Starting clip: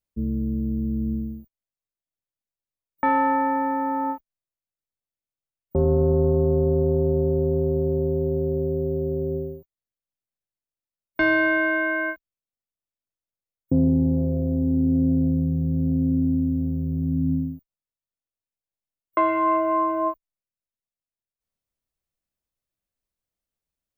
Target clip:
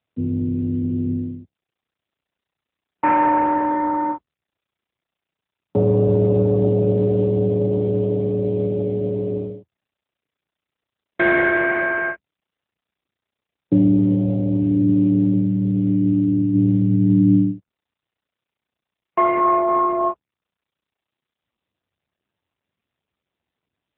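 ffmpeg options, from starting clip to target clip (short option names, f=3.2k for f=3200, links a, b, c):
-filter_complex "[0:a]asplit=3[a][b][c];[a]afade=t=out:st=16.53:d=0.02[d];[b]acontrast=26,afade=t=in:st=16.53:d=0.02,afade=t=out:st=17.51:d=0.02[e];[c]afade=t=in:st=17.51:d=0.02[f];[d][e][f]amix=inputs=3:normalize=0,afreqshift=30,volume=4.5dB" -ar 8000 -c:a libopencore_amrnb -b:a 7950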